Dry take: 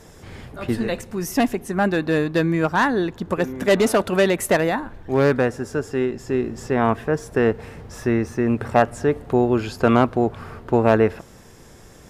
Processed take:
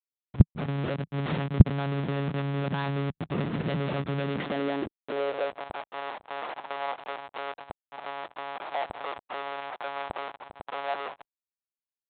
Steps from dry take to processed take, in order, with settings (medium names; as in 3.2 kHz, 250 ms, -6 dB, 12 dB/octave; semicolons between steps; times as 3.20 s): Schmitt trigger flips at -28.5 dBFS; monotone LPC vocoder at 8 kHz 140 Hz; high-pass sweep 160 Hz -> 780 Hz, 4.18–5.73 s; trim -8.5 dB